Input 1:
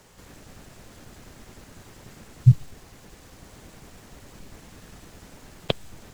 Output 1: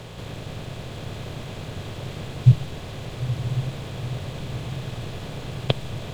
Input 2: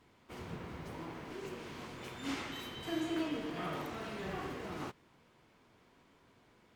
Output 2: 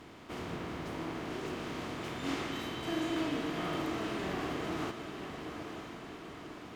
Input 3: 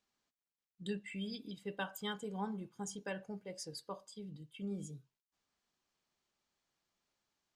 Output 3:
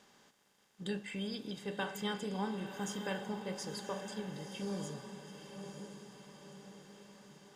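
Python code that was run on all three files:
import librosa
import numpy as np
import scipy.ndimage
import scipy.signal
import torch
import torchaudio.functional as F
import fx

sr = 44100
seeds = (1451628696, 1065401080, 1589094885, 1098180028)

y = fx.bin_compress(x, sr, power=0.6)
y = fx.high_shelf(y, sr, hz=12000.0, db=-5.5)
y = fx.echo_diffused(y, sr, ms=964, feedback_pct=53, wet_db=-7.5)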